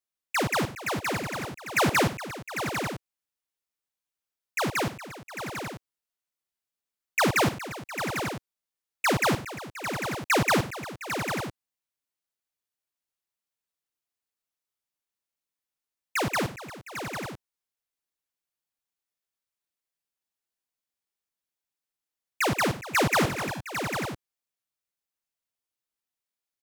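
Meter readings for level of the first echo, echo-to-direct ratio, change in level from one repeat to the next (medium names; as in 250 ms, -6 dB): -15.5 dB, -5.5 dB, no regular repeats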